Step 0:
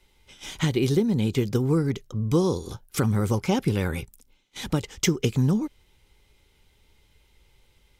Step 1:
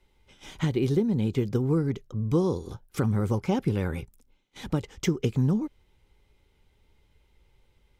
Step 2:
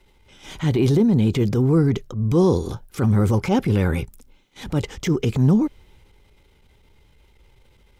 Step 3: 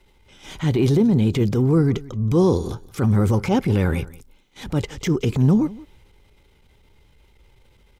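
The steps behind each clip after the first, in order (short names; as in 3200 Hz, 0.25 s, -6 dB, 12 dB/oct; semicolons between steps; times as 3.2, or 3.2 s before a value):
high shelf 2300 Hz -9.5 dB; gain -2 dB
transient shaper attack -8 dB, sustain +4 dB; gain +8.5 dB
echo 0.175 s -20 dB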